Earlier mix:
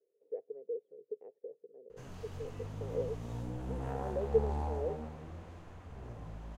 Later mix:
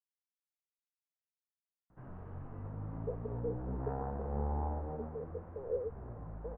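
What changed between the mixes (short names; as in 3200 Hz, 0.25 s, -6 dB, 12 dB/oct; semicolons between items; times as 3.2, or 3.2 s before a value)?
speech: entry +2.75 s; master: add LPF 1500 Hz 24 dB/oct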